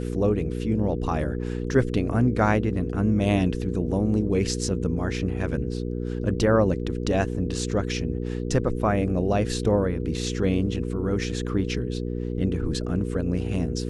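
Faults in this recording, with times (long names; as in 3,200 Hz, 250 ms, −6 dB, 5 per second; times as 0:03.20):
mains hum 60 Hz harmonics 8 −29 dBFS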